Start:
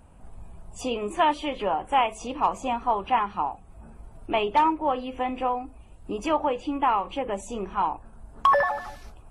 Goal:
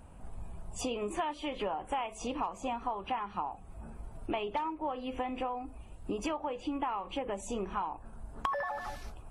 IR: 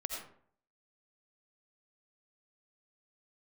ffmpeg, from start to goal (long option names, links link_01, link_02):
-af "acompressor=threshold=-31dB:ratio=12"